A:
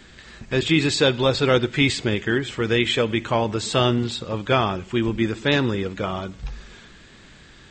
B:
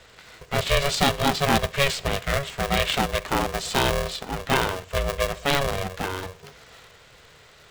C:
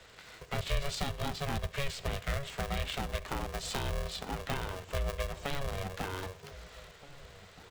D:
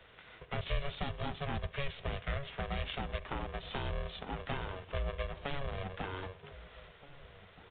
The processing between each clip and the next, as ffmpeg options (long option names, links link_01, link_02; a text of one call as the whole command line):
ffmpeg -i in.wav -af "highpass=frequency=120:width=0.5412,highpass=frequency=120:width=1.3066,aeval=exprs='val(0)*sgn(sin(2*PI*280*n/s))':channel_layout=same,volume=-2.5dB" out.wav
ffmpeg -i in.wav -filter_complex "[0:a]acrossover=split=110[link_01][link_02];[link_02]acompressor=threshold=-29dB:ratio=10[link_03];[link_01][link_03]amix=inputs=2:normalize=0,asplit=2[link_04][link_05];[link_05]adelay=1574,volume=-17dB,highshelf=frequency=4000:gain=-35.4[link_06];[link_04][link_06]amix=inputs=2:normalize=0,volume=-4.5dB" out.wav
ffmpeg -i in.wav -af "aresample=8000,aresample=44100,volume=-2.5dB" out.wav